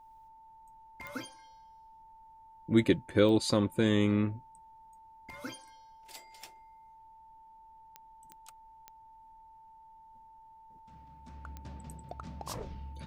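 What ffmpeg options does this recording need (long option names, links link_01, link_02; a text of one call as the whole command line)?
ffmpeg -i in.wav -af "adeclick=threshold=4,bandreject=frequency=890:width=30,agate=range=-21dB:threshold=-48dB" out.wav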